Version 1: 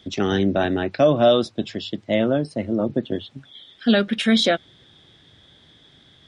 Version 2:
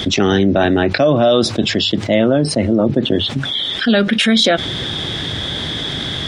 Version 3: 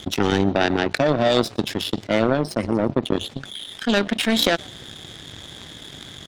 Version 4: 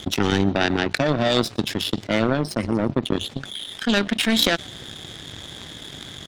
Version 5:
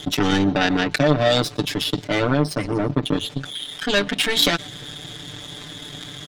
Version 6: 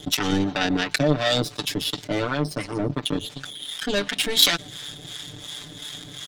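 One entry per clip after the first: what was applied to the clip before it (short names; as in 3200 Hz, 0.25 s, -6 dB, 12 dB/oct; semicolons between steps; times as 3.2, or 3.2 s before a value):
fast leveller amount 70%; gain +1.5 dB
frequency-shifting echo 0.12 s, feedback 32%, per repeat +66 Hz, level -18 dB; power-law curve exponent 2
dynamic EQ 580 Hz, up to -5 dB, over -30 dBFS, Q 0.73; gain +1.5 dB
comb 6.8 ms, depth 95%; gain -1 dB
high shelf 3600 Hz +8 dB; harmonic tremolo 2.8 Hz, depth 70%, crossover 740 Hz; gain -1.5 dB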